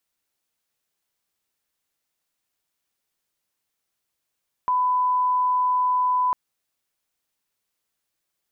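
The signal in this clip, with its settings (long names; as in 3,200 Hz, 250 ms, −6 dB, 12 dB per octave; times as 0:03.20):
line-up tone −18 dBFS 1.65 s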